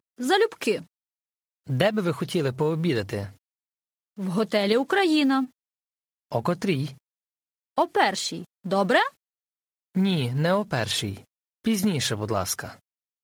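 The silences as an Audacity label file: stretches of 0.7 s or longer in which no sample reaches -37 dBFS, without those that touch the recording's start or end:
0.820000	1.690000	silence
3.290000	4.180000	silence
5.460000	6.320000	silence
6.930000	7.780000	silence
9.090000	9.960000	silence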